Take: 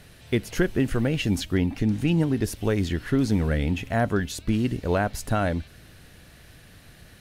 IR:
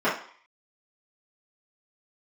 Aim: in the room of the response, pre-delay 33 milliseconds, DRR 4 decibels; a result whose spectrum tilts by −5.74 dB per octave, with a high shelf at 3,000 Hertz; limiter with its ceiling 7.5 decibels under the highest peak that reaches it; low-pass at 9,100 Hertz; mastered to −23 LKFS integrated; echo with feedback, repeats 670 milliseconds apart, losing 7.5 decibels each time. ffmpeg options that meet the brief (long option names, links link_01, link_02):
-filter_complex "[0:a]lowpass=9100,highshelf=frequency=3000:gain=3.5,alimiter=limit=-18dB:level=0:latency=1,aecho=1:1:670|1340|2010|2680|3350:0.422|0.177|0.0744|0.0312|0.0131,asplit=2[link_01][link_02];[1:a]atrim=start_sample=2205,adelay=33[link_03];[link_02][link_03]afir=irnorm=-1:irlink=0,volume=-20.5dB[link_04];[link_01][link_04]amix=inputs=2:normalize=0,volume=4.5dB"